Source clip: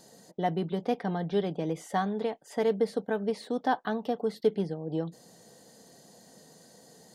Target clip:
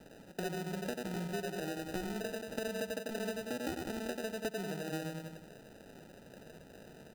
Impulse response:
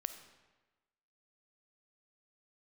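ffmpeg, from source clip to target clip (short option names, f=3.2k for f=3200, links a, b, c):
-filter_complex "[0:a]asplit=2[a][b];[b]adelay=91,lowpass=f=1.1k:p=1,volume=-3dB,asplit=2[c][d];[d]adelay=91,lowpass=f=1.1k:p=1,volume=0.48,asplit=2[e][f];[f]adelay=91,lowpass=f=1.1k:p=1,volume=0.48,asplit=2[g][h];[h]adelay=91,lowpass=f=1.1k:p=1,volume=0.48,asplit=2[i][j];[j]adelay=91,lowpass=f=1.1k:p=1,volume=0.48,asplit=2[k][l];[l]adelay=91,lowpass=f=1.1k:p=1,volume=0.48[m];[a][c][e][g][i][k][m]amix=inputs=7:normalize=0,acrossover=split=170[n][o];[o]acrusher=samples=40:mix=1:aa=0.000001[p];[n][p]amix=inputs=2:normalize=0,acompressor=threshold=-36dB:ratio=6"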